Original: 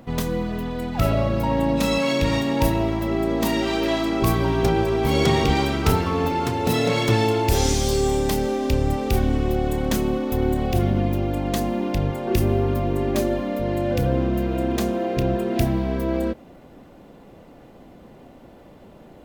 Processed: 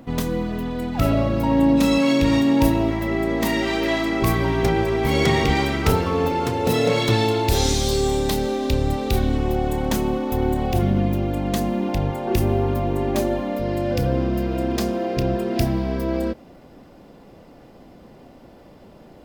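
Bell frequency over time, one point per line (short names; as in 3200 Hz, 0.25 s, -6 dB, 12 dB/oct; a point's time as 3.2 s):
bell +8 dB 0.28 oct
280 Hz
from 2.91 s 2000 Hz
from 5.87 s 500 Hz
from 7 s 3900 Hz
from 9.38 s 860 Hz
from 10.82 s 180 Hz
from 11.89 s 830 Hz
from 13.58 s 5000 Hz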